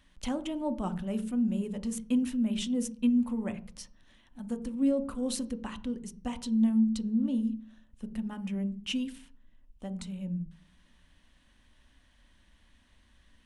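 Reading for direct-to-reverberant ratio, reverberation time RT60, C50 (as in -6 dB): 9.0 dB, 0.40 s, 16.5 dB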